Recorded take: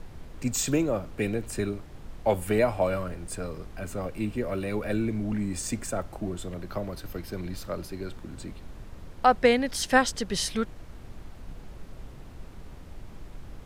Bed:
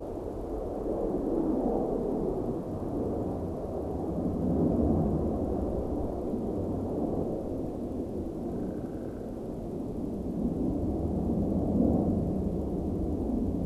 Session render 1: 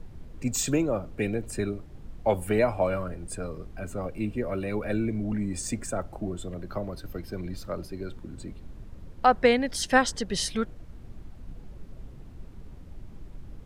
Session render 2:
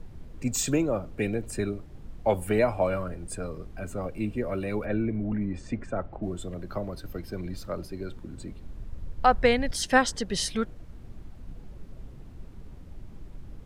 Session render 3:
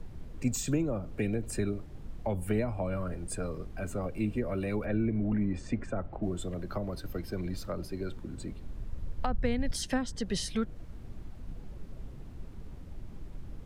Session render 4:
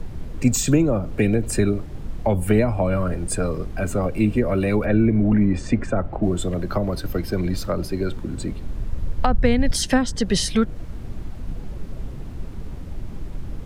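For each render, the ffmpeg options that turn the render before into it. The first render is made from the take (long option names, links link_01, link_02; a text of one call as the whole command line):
ffmpeg -i in.wav -af "afftdn=noise_reduction=8:noise_floor=-45" out.wav
ffmpeg -i in.wav -filter_complex "[0:a]asplit=3[link_01][link_02][link_03];[link_01]afade=type=out:start_time=4.85:duration=0.02[link_04];[link_02]lowpass=2400,afade=type=in:start_time=4.85:duration=0.02,afade=type=out:start_time=6.22:duration=0.02[link_05];[link_03]afade=type=in:start_time=6.22:duration=0.02[link_06];[link_04][link_05][link_06]amix=inputs=3:normalize=0,asettb=1/sr,asplit=3[link_07][link_08][link_09];[link_07]atrim=end=8.594[link_10];[link_08]atrim=start=8.59:end=9.71,asetpts=PTS-STARTPTS,afade=type=in:duration=0.004:curve=qsin,afade=type=out:start_time=1.116:duration=0.004:curve=qsin,asubboost=boost=10.5:cutoff=120[link_11];[link_09]atrim=start=9.706[link_12];[link_10][link_11]acrossfade=duration=0.004:curve1=hsin:curve2=qsin[link_13];[link_13][link_12]acrossfade=duration=0.004:curve1=qsin:curve2=hsin" out.wav
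ffmpeg -i in.wav -filter_complex "[0:a]acrossover=split=270[link_01][link_02];[link_02]acompressor=threshold=-33dB:ratio=8[link_03];[link_01][link_03]amix=inputs=2:normalize=0" out.wav
ffmpeg -i in.wav -af "volume=12dB" out.wav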